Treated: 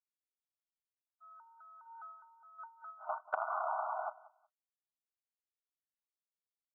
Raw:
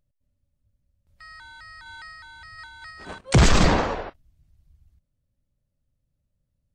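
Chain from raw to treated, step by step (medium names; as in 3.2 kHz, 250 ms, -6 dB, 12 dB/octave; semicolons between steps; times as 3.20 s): FFT band-pass 610–1500 Hz; expander -40 dBFS; compression 16:1, threshold -40 dBFS, peak gain reduction 19.5 dB; 2.00–4.07 s: distance through air 250 m; on a send: feedback delay 184 ms, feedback 20%, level -20 dB; on the sum: trim +8.5 dB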